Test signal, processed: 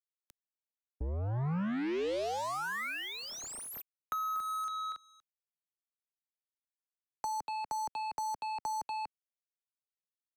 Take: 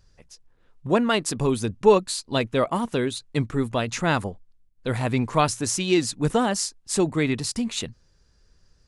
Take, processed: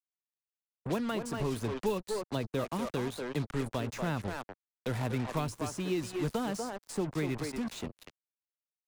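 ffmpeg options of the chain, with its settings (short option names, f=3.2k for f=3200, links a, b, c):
-filter_complex "[0:a]asplit=2[a][b];[b]adelay=240,highpass=300,lowpass=3.4k,asoftclip=type=hard:threshold=-14dB,volume=-6dB[c];[a][c]amix=inputs=2:normalize=0,acrusher=bits=4:mix=0:aa=0.5,acrossover=split=160|430|1600[d][e][f][g];[d]acompressor=threshold=-29dB:ratio=4[h];[e]acompressor=threshold=-31dB:ratio=4[i];[f]acompressor=threshold=-32dB:ratio=4[j];[g]acompressor=threshold=-40dB:ratio=4[k];[h][i][j][k]amix=inputs=4:normalize=0,volume=-5.5dB"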